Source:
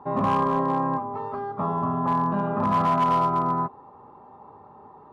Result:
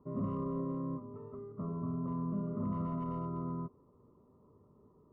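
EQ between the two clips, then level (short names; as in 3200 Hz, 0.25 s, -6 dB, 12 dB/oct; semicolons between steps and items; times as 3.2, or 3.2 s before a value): running mean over 54 samples; low shelf 69 Hz +6 dB; -8.0 dB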